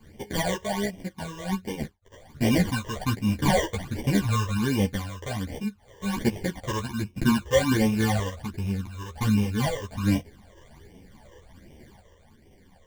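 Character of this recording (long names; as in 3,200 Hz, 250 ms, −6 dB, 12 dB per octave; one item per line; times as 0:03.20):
aliases and images of a low sample rate 1,300 Hz, jitter 0%
phaser sweep stages 12, 1.3 Hz, lowest notch 230–1,400 Hz
sample-and-hold tremolo
a shimmering, thickened sound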